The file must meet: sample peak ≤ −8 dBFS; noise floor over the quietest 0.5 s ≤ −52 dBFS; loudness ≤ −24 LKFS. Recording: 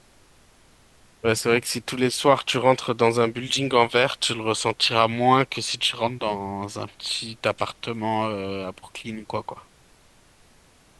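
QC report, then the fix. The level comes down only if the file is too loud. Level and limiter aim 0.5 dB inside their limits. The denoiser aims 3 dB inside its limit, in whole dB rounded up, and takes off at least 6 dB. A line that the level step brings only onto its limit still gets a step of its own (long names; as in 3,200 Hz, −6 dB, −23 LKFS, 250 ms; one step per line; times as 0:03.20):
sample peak −4.5 dBFS: out of spec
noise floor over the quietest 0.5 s −56 dBFS: in spec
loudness −23.0 LKFS: out of spec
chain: level −1.5 dB
brickwall limiter −8.5 dBFS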